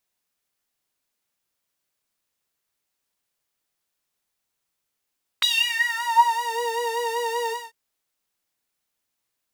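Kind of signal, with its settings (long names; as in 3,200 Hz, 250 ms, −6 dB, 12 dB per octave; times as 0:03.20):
subtractive patch with vibrato A#5, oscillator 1 saw, interval 0 semitones, detune 19 cents, oscillator 2 level −3 dB, sub −19 dB, noise −28 dB, filter highpass, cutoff 240 Hz, Q 9.1, filter envelope 4 octaves, filter decay 1.13 s, filter sustain 25%, attack 6.2 ms, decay 0.36 s, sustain −7.5 dB, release 0.22 s, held 2.08 s, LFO 5.2 Hz, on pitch 53 cents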